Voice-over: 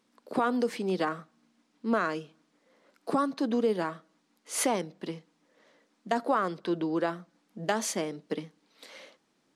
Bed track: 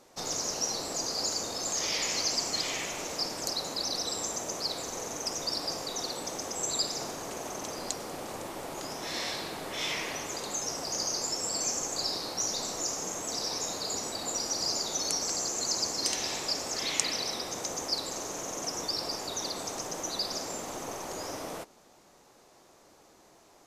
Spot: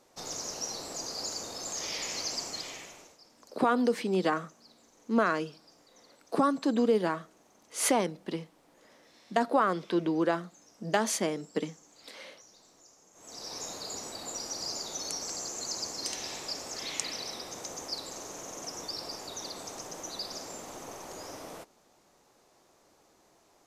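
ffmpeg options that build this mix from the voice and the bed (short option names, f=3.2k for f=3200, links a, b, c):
-filter_complex "[0:a]adelay=3250,volume=1.5dB[a];[1:a]volume=15.5dB,afade=t=out:st=2.38:d=0.8:silence=0.0891251,afade=t=in:st=13.13:d=0.48:silence=0.0944061[b];[a][b]amix=inputs=2:normalize=0"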